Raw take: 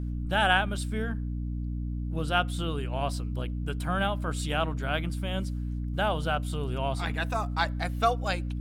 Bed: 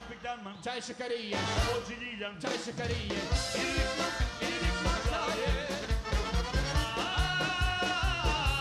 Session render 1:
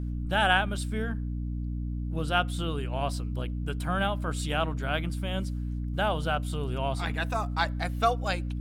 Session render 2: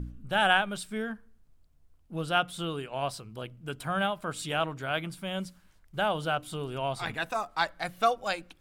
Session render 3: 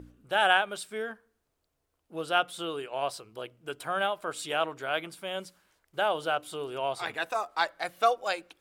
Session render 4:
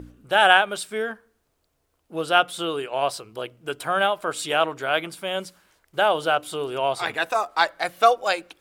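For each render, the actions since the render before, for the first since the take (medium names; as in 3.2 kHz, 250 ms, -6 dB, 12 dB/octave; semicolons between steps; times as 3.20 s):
no audible change
de-hum 60 Hz, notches 5
high-pass 100 Hz 6 dB/octave; resonant low shelf 280 Hz -9 dB, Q 1.5
trim +7.5 dB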